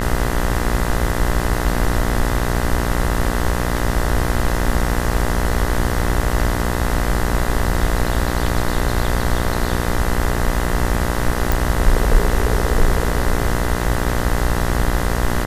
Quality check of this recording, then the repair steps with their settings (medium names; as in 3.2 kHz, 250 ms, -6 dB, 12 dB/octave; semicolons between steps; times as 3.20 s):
buzz 60 Hz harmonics 34 -22 dBFS
11.52 s: pop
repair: de-click; de-hum 60 Hz, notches 34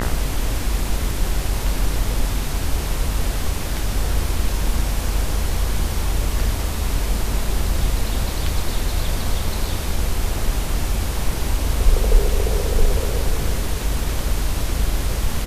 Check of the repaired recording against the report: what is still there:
nothing left